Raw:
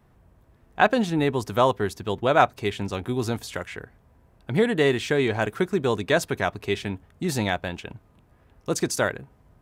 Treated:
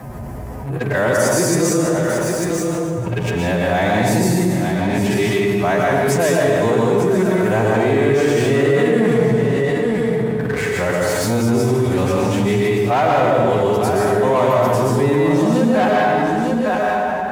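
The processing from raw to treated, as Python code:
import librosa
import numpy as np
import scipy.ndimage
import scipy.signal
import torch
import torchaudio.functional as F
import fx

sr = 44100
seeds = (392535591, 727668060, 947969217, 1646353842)

y = x[::-1].copy()
y = fx.peak_eq(y, sr, hz=1400.0, db=-5.0, octaves=0.53)
y = fx.hum_notches(y, sr, base_hz=50, count=9)
y = y + 10.0 ** (-12.5 / 20.0) * np.pad(y, (int(499 * sr / 1000.0), 0))[:len(y)]
y = fx.stretch_vocoder(y, sr, factor=1.8)
y = fx.peak_eq(y, sr, hz=3500.0, db=-9.0, octaves=1.0)
y = fx.leveller(y, sr, passes=2)
y = scipy.signal.sosfilt(scipy.signal.butter(2, 69.0, 'highpass', fs=sr, output='sos'), y)
y = fx.rev_plate(y, sr, seeds[0], rt60_s=1.4, hf_ratio=0.75, predelay_ms=105, drr_db=-4.0)
y = fx.env_flatten(y, sr, amount_pct=70)
y = y * librosa.db_to_amplitude(-6.5)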